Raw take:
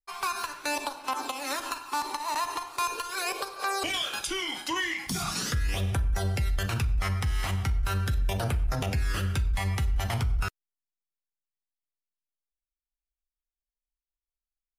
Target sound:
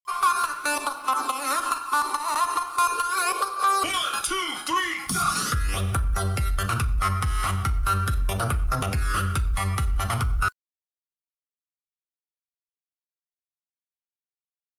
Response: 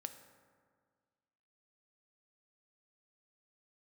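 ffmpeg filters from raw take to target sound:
-filter_complex "[0:a]superequalizer=10b=3.55:16b=2.51,asplit=2[link_01][link_02];[link_02]aeval=exprs='0.0794*(abs(mod(val(0)/0.0794+3,4)-2)-1)':channel_layout=same,volume=-10.5dB[link_03];[link_01][link_03]amix=inputs=2:normalize=0,acrusher=bits=9:mix=0:aa=0.000001"

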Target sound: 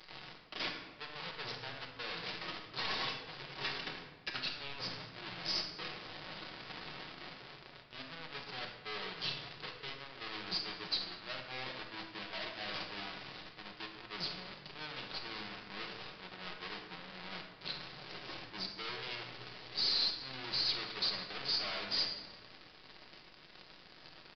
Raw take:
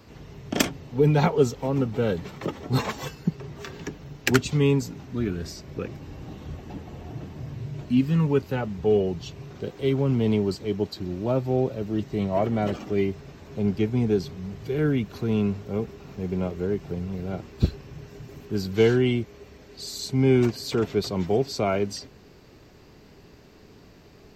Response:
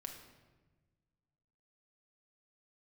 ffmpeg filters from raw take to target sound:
-filter_complex "[0:a]acrossover=split=890[link_01][link_02];[link_01]crystalizer=i=3:c=0[link_03];[link_03][link_02]amix=inputs=2:normalize=0,aecho=1:1:6.4:0.77,areverse,acompressor=threshold=-31dB:ratio=20,areverse,aeval=exprs='(tanh(200*val(0)+0.55)-tanh(0.55))/200':channel_layout=same,aemphasis=mode=production:type=riaa,acrusher=bits=6:mix=0:aa=0.5[link_04];[1:a]atrim=start_sample=2205,asetrate=41454,aresample=44100[link_05];[link_04][link_05]afir=irnorm=-1:irlink=0,aresample=11025,aresample=44100,volume=14dB"

